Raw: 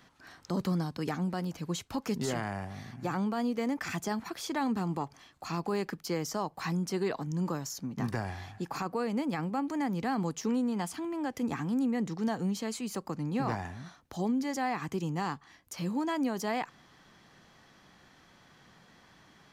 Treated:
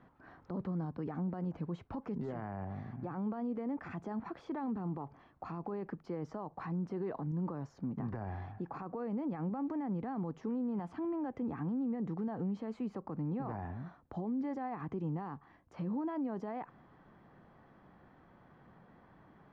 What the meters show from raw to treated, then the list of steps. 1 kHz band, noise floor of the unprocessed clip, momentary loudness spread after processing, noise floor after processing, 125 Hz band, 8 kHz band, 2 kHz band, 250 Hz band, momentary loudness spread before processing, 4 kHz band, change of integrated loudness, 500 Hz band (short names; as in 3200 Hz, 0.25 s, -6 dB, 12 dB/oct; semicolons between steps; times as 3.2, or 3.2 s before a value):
-8.0 dB, -61 dBFS, 7 LU, -63 dBFS, -4.0 dB, under -30 dB, -14.0 dB, -5.0 dB, 7 LU, under -20 dB, -5.5 dB, -6.5 dB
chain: limiter -31 dBFS, peak gain reduction 10 dB; LPF 1100 Hz 12 dB/oct; gain +1 dB